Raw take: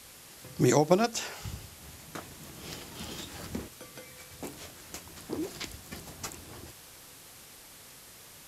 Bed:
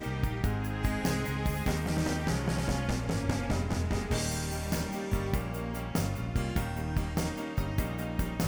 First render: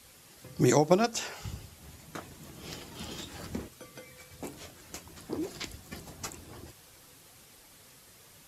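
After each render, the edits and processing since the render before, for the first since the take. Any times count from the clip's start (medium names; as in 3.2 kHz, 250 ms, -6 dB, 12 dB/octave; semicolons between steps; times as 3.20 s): noise reduction 6 dB, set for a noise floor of -51 dBFS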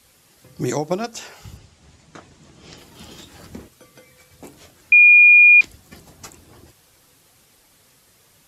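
1.57–2.78 s: low-pass 8 kHz 24 dB/octave; 4.92–5.61 s: bleep 2.43 kHz -6 dBFS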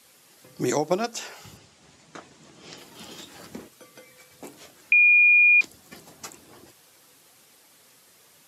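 Bessel high-pass 220 Hz, order 2; dynamic bell 2.3 kHz, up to -7 dB, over -25 dBFS, Q 1.1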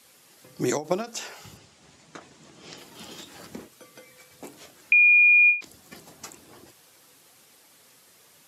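endings held to a fixed fall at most 190 dB/s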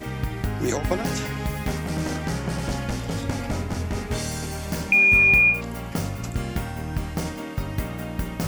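add bed +3 dB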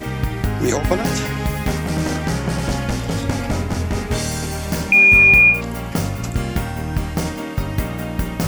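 trim +6 dB; peak limiter -3 dBFS, peak gain reduction 2 dB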